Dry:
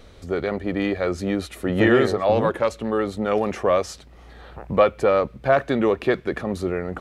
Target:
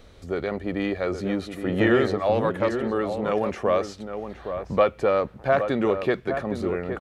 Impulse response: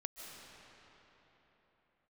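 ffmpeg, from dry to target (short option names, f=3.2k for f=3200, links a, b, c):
-filter_complex "[0:a]asplit=2[a][b];[b]adelay=816.3,volume=-8dB,highshelf=f=4k:g=-18.4[c];[a][c]amix=inputs=2:normalize=0,acrossover=split=5800[d][e];[e]acompressor=threshold=-50dB:ratio=4:attack=1:release=60[f];[d][f]amix=inputs=2:normalize=0,volume=-3dB"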